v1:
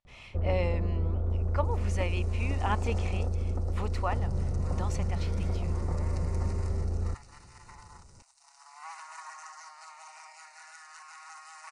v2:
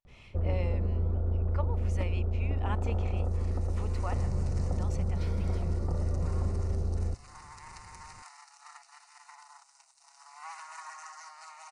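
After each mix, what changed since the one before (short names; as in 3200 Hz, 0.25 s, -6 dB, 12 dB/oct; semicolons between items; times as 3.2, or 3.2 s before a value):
speech -7.0 dB; second sound: entry +1.60 s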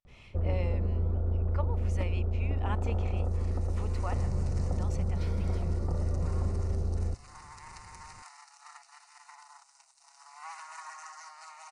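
none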